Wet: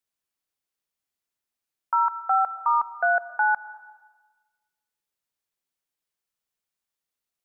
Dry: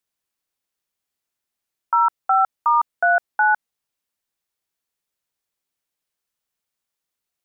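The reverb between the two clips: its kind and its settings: digital reverb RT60 1.3 s, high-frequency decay 0.95×, pre-delay 75 ms, DRR 15 dB; gain -4.5 dB

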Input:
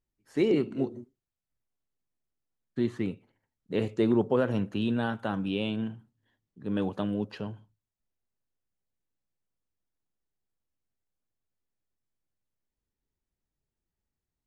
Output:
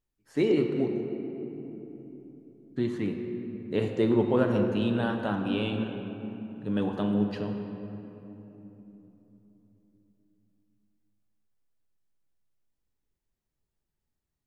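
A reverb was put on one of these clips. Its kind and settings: shoebox room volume 220 m³, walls hard, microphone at 0.32 m

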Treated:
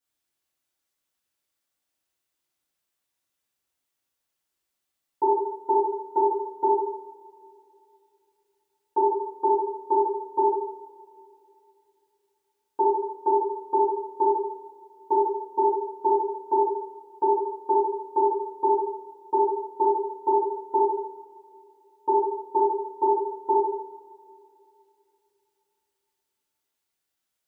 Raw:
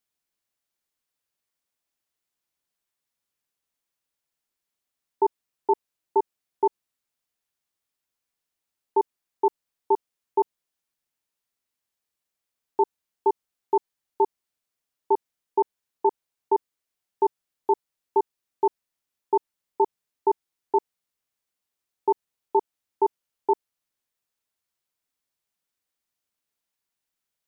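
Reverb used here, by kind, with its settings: two-slope reverb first 0.8 s, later 3.1 s, from -21 dB, DRR -9.5 dB; gain -7 dB

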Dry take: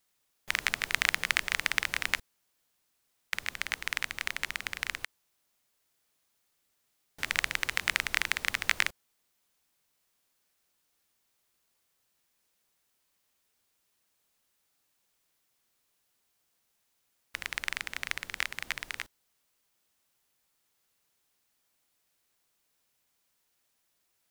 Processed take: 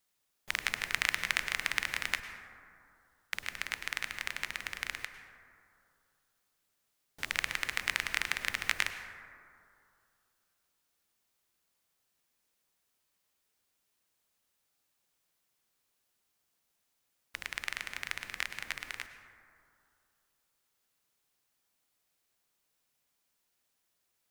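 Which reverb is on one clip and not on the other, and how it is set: plate-style reverb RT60 2.5 s, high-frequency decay 0.3×, pre-delay 90 ms, DRR 9 dB; gain -3.5 dB

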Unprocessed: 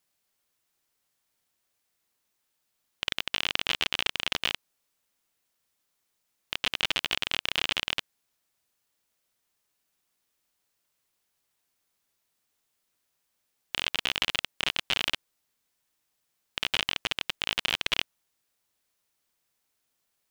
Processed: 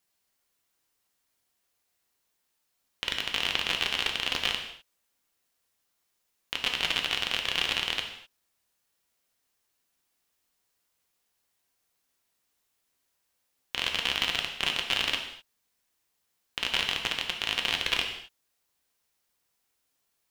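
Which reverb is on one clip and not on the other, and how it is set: non-linear reverb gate 0.28 s falling, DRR 2.5 dB; gain -1 dB

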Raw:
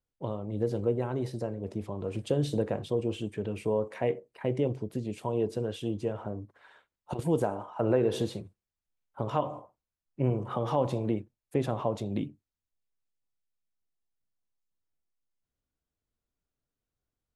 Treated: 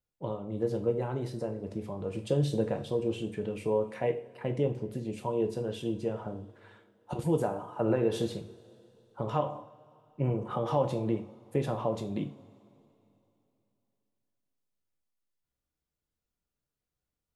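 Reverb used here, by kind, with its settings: two-slope reverb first 0.36 s, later 3 s, from -22 dB, DRR 5 dB; gain -2 dB

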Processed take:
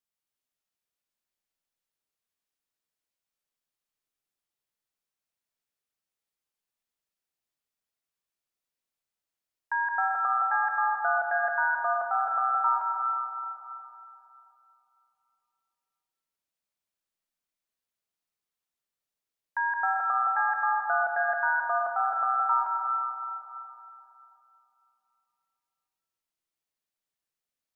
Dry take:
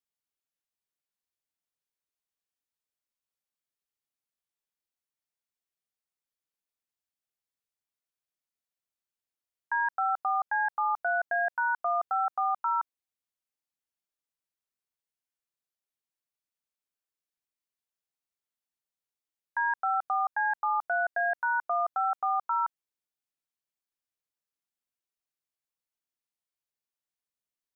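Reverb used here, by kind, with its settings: digital reverb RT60 3 s, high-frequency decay 0.8×, pre-delay 75 ms, DRR 0 dB

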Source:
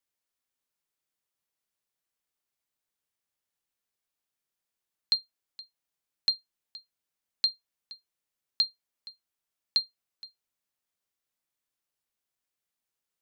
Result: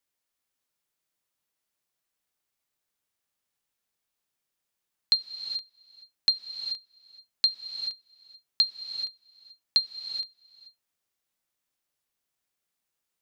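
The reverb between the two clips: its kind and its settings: non-linear reverb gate 0.45 s rising, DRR 7.5 dB; gain +3 dB

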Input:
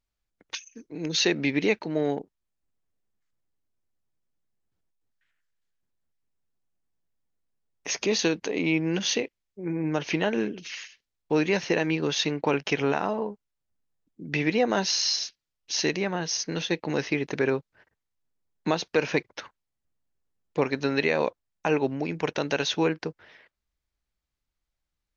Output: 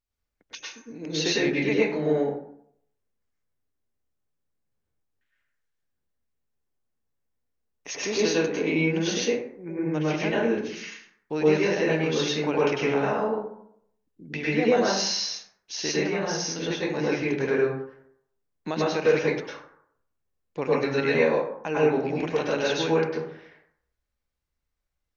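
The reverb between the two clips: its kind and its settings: plate-style reverb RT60 0.67 s, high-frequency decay 0.45×, pre-delay 90 ms, DRR -6.5 dB; gain -6 dB

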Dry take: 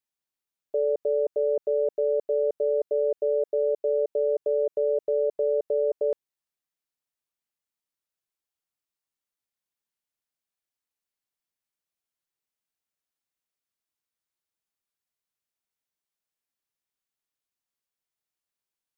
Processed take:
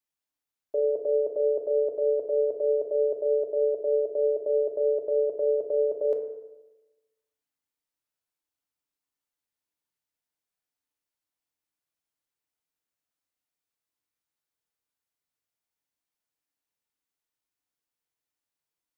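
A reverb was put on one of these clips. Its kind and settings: FDN reverb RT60 1.1 s, low-frequency decay 1×, high-frequency decay 0.3×, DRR 2.5 dB; gain -1.5 dB

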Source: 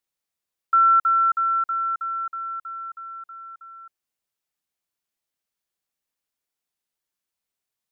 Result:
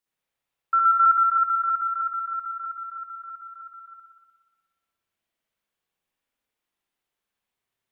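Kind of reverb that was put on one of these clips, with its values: spring tank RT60 1.3 s, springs 59 ms, chirp 75 ms, DRR -8 dB; gain -3 dB

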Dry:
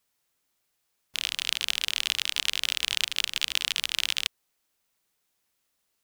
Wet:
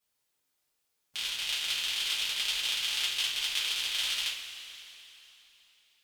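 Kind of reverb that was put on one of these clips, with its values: two-slope reverb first 0.34 s, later 3.4 s, from -16 dB, DRR -7.5 dB; gain -11.5 dB

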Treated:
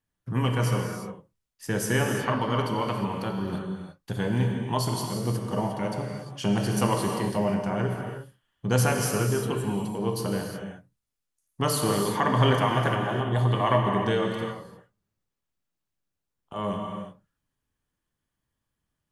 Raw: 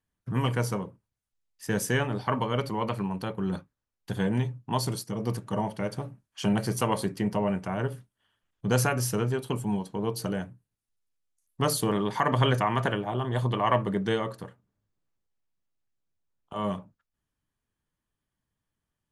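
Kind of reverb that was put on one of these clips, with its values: non-linear reverb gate 0.38 s flat, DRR 1.5 dB

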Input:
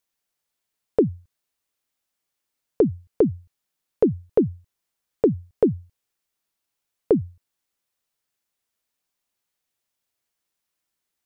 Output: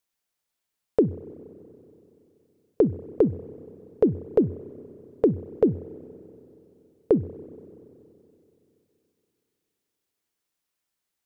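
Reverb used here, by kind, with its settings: spring tank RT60 3.1 s, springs 31/47 ms, chirp 35 ms, DRR 15.5 dB; gain -1.5 dB

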